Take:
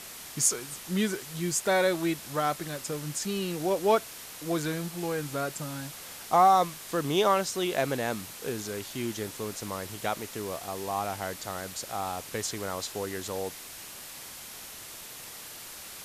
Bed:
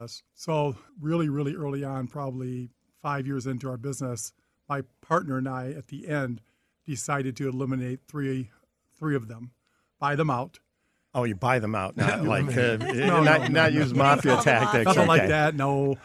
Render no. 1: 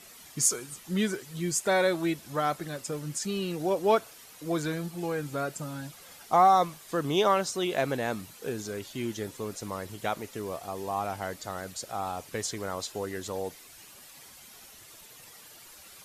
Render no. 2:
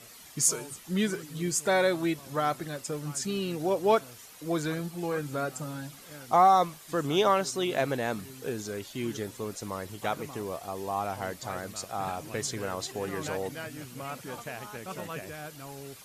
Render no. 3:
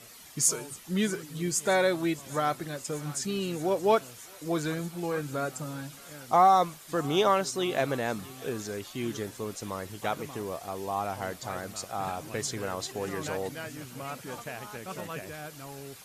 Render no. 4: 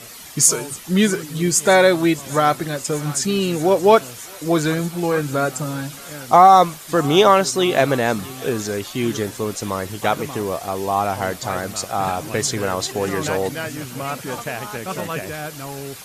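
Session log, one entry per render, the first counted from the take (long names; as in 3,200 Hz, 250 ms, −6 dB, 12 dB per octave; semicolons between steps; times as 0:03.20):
broadband denoise 10 dB, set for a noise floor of −44 dBFS
mix in bed −19.5 dB
feedback echo with a high-pass in the loop 625 ms, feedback 84%, high-pass 1,100 Hz, level −20 dB
level +11.5 dB; brickwall limiter −1 dBFS, peak gain reduction 2.5 dB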